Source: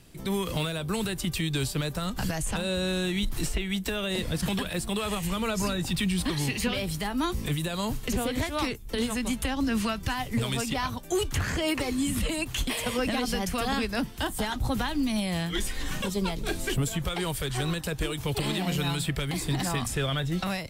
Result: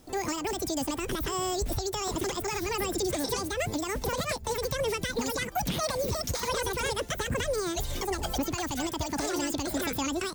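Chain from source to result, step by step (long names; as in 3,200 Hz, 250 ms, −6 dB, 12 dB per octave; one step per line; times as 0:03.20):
wrong playback speed 7.5 ips tape played at 15 ips
level −2 dB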